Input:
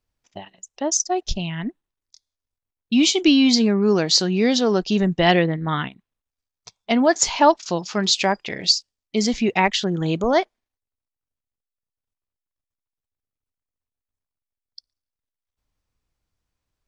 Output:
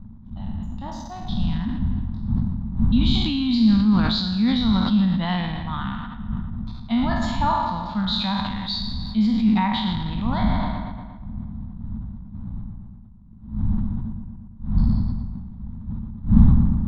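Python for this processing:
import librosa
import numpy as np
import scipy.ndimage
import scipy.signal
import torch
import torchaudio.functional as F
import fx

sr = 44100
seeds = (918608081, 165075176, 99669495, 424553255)

p1 = fx.spec_trails(x, sr, decay_s=1.04)
p2 = fx.dmg_wind(p1, sr, seeds[0], corner_hz=90.0, level_db=-18.0)
p3 = fx.leveller(p2, sr, passes=1)
p4 = fx.curve_eq(p3, sr, hz=(150.0, 220.0, 390.0, 660.0, 940.0, 2700.0, 3800.0, 5900.0, 10000.0), db=(0, 13, -23, -9, 4, -11, 4, -27, -21))
p5 = p4 + fx.echo_filtered(p4, sr, ms=117, feedback_pct=69, hz=4800.0, wet_db=-12.5, dry=0)
p6 = fx.sustainer(p5, sr, db_per_s=31.0)
y = p6 * librosa.db_to_amplitude(-13.0)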